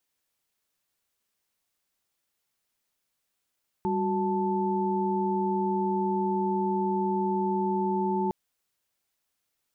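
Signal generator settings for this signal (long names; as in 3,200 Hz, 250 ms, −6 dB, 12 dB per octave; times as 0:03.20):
held notes G3/F#4/A5 sine, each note −28.5 dBFS 4.46 s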